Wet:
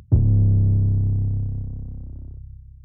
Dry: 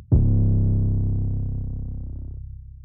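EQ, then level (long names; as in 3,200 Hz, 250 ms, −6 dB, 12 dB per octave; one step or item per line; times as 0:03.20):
dynamic equaliser 100 Hz, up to +6 dB, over −32 dBFS
−2.5 dB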